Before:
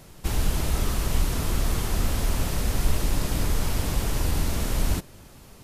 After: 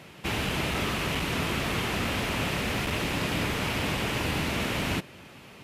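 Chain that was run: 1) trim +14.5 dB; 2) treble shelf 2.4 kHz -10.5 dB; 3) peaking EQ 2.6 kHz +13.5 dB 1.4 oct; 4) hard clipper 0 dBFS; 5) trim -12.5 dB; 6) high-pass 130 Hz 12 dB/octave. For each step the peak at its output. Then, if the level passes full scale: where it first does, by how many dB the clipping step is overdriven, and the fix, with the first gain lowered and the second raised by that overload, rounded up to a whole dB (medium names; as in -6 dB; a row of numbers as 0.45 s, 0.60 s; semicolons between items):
+5.5 dBFS, +4.5 dBFS, +5.0 dBFS, 0.0 dBFS, -12.5 dBFS, -16.0 dBFS; step 1, 5.0 dB; step 1 +9.5 dB, step 5 -7.5 dB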